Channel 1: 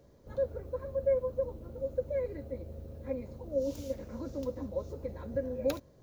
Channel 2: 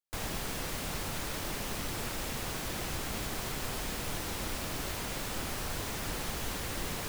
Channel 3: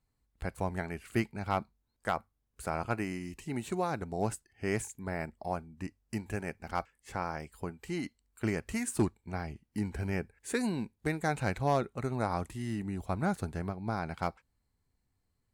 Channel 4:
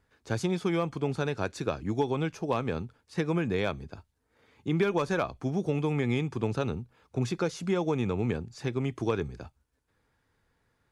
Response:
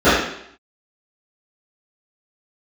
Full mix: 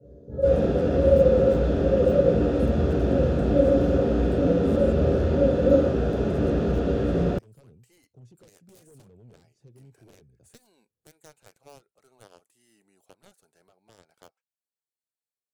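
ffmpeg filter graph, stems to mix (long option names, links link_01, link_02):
-filter_complex "[0:a]volume=-16dB,asplit=2[link_01][link_02];[link_02]volume=-7dB[link_03];[1:a]lowpass=3300,adelay=300,volume=-6.5dB,asplit=2[link_04][link_05];[link_05]volume=-11.5dB[link_06];[2:a]highpass=1000,deesser=0.95,volume=-3dB[link_07];[3:a]adelay=1000,volume=-17.5dB[link_08];[link_01][link_07][link_08]amix=inputs=3:normalize=0,aeval=exprs='0.075*(cos(1*acos(clip(val(0)/0.075,-1,1)))-cos(1*PI/2))+0.00596*(cos(5*acos(clip(val(0)/0.075,-1,1)))-cos(5*PI/2))+0.0211*(cos(7*acos(clip(val(0)/0.075,-1,1)))-cos(7*PI/2))':channel_layout=same,acompressor=threshold=-55dB:ratio=1.5,volume=0dB[link_09];[4:a]atrim=start_sample=2205[link_10];[link_03][link_06]amix=inputs=2:normalize=0[link_11];[link_11][link_10]afir=irnorm=-1:irlink=0[link_12];[link_04][link_09][link_12]amix=inputs=3:normalize=0,equalizer=frequency=125:width_type=o:width=1:gain=8,equalizer=frequency=500:width_type=o:width=1:gain=6,equalizer=frequency=1000:width_type=o:width=1:gain=-9,equalizer=frequency=2000:width_type=o:width=1:gain=-10,equalizer=frequency=4000:width_type=o:width=1:gain=-5"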